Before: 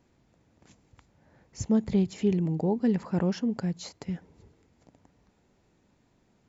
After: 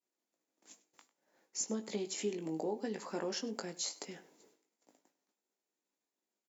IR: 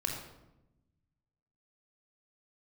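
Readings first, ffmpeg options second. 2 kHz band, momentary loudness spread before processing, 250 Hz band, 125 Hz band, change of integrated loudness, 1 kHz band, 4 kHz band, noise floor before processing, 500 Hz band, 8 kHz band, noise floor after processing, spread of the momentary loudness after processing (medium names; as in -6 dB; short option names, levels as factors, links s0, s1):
-3.0 dB, 12 LU, -15.0 dB, -21.0 dB, -10.5 dB, -5.5 dB, +2.0 dB, -68 dBFS, -7.0 dB, no reading, under -85 dBFS, 7 LU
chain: -filter_complex "[0:a]aemphasis=mode=production:type=cd,agate=range=0.0224:threshold=0.00224:ratio=3:detection=peak,highpass=f=280:w=0.5412,highpass=f=280:w=1.3066,highshelf=f=6600:g=10,acompressor=threshold=0.0316:ratio=5,flanger=delay=5.3:depth=1.1:regen=-89:speed=0.79:shape=sinusoidal,asplit=2[s0][s1];[s1]adelay=19,volume=0.447[s2];[s0][s2]amix=inputs=2:normalize=0,asplit=2[s3][s4];[s4]adelay=99.13,volume=0.126,highshelf=f=4000:g=-2.23[s5];[s3][s5]amix=inputs=2:normalize=0,volume=1.12"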